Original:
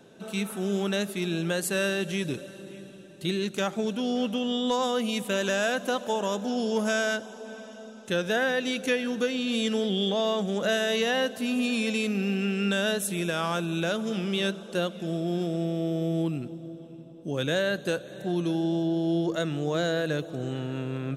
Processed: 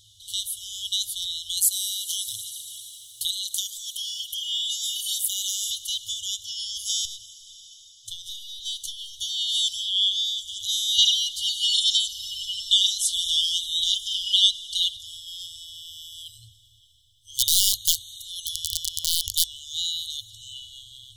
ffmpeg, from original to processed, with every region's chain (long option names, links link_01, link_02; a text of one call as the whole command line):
ffmpeg -i in.wav -filter_complex "[0:a]asettb=1/sr,asplit=3[link_01][link_02][link_03];[link_01]atrim=end=1.574[link_04];[link_02]atrim=start=1.57:end=5.71,asetpts=PTS-STARTPTS,afade=type=in:duration=0.004:curve=qsin,afade=type=out:start_time=4.136:duration=0.004:curve=qsin,aemphasis=mode=production:type=bsi,acompressor=threshold=-36dB:ratio=2:attack=3.2:release=140:knee=1:detection=peak,aphaser=in_gain=1:out_gain=1:delay=3.1:decay=0.4:speed=1.1:type=sinusoidal[link_05];[link_03]atrim=start=5.706[link_06];[link_04][link_05]acrossfade=duration=0.004:curve1=hsin:curve2=qsin[link_07];[link_07][link_06]acrossfade=duration=0.004:curve1=qsin:curve2=hsin,asettb=1/sr,asplit=3[link_08][link_09][link_10];[link_08]atrim=end=7.054[link_11];[link_09]atrim=start=7.05:end=9.2,asetpts=PTS-STARTPTS,afade=type=in:duration=0.004:curve=qsin,afade=type=out:start_time=2.146:duration=0.004:curve=qsin,equalizer=frequency=270:width_type=o:width=1.2:gain=-5,acompressor=threshold=-32dB:ratio=3:attack=3.2:release=140:knee=1:detection=peak,aeval=exprs='(tanh(11.2*val(0)+0.4)-tanh(0.4))/11.2':channel_layout=same[link_12];[link_10]atrim=start=9.196[link_13];[link_11][link_12]acrossfade=duration=0.004:curve1=hsin:curve2=qsin[link_14];[link_14][link_13]acrossfade=duration=0.004:curve1=qsin:curve2=hsin,asettb=1/sr,asplit=3[link_15][link_16][link_17];[link_15]atrim=end=10.984[link_18];[link_16]atrim=start=10.98:end=14.97,asetpts=PTS-STARTPTS,afade=type=in:duration=0.004:curve=qsin,afade=type=out:start_time=3.986:duration=0.004:curve=qsin,acrossover=split=8600[link_19][link_20];[link_20]acompressor=threshold=-58dB:ratio=4:attack=1:release=60[link_21];[link_19][link_21]amix=inputs=2:normalize=0,equalizer=frequency=2000:width_type=o:width=2.2:gain=6,aecho=1:1:4.5:0.88,atrim=end_sample=175959[link_22];[link_17]atrim=start=14.966[link_23];[link_18][link_22]acrossfade=duration=0.004:curve1=hsin:curve2=qsin[link_24];[link_24][link_23]acrossfade=duration=0.004:curve1=qsin:curve2=hsin,asettb=1/sr,asplit=3[link_25][link_26][link_27];[link_25]atrim=end=17.354[link_28];[link_26]atrim=start=17.35:end=19.46,asetpts=PTS-STARTPTS,afade=type=in:duration=0.004:curve=qsin,afade=type=out:start_time=2.106:duration=0.004:curve=qsin,highshelf=frequency=6200:gain=8.5,aeval=exprs='(mod(8.41*val(0)+1,2)-1)/8.41':channel_layout=same[link_29];[link_27]atrim=start=19.456[link_30];[link_28][link_29]acrossfade=duration=0.004:curve1=hsin:curve2=qsin[link_31];[link_31][link_30]acrossfade=duration=0.004:curve1=qsin:curve2=hsin,bandreject=frequency=50:width_type=h:width=6,bandreject=frequency=100:width_type=h:width=6,afftfilt=real='re*(1-between(b*sr/4096,110,2900))':imag='im*(1-between(b*sr/4096,110,2900))':win_size=4096:overlap=0.75,acontrast=28,volume=6dB" out.wav